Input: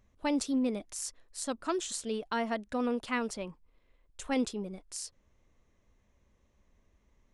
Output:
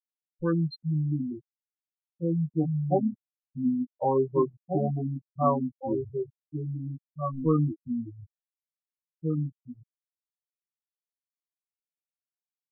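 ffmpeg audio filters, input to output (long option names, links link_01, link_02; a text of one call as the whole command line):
ffmpeg -i in.wav -filter_complex "[0:a]aecho=1:1:1032:0.531,afftfilt=real='re*gte(hypot(re,im),0.0794)':imag='im*gte(hypot(re,im),0.0794)':win_size=1024:overlap=0.75,acrossover=split=330[link_01][link_02];[link_01]acompressor=threshold=-47dB:ratio=6[link_03];[link_03][link_02]amix=inputs=2:normalize=0,aecho=1:1:7.2:0.97,dynaudnorm=framelen=110:gausssize=13:maxgain=4dB,asetrate=25442,aresample=44100,volume=2.5dB" out.wav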